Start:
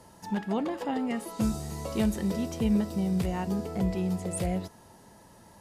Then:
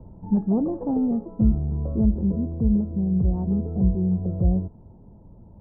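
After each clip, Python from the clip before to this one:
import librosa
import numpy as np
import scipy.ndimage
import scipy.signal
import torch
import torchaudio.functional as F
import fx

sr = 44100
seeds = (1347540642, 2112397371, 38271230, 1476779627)

y = scipy.signal.sosfilt(scipy.signal.bessel(8, 650.0, 'lowpass', norm='mag', fs=sr, output='sos'), x)
y = fx.tilt_eq(y, sr, slope=-4.5)
y = fx.rider(y, sr, range_db=4, speed_s=0.5)
y = y * 10.0 ** (-3.5 / 20.0)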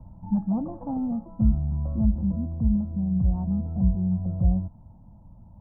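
y = fx.fixed_phaser(x, sr, hz=1000.0, stages=4)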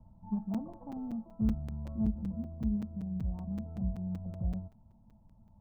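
y = fx.comb_fb(x, sr, f0_hz=220.0, decay_s=0.16, harmonics='all', damping=0.0, mix_pct=70)
y = fx.buffer_crackle(y, sr, first_s=0.54, period_s=0.19, block=256, kind='zero')
y = fx.doppler_dist(y, sr, depth_ms=0.17)
y = y * 10.0 ** (-4.0 / 20.0)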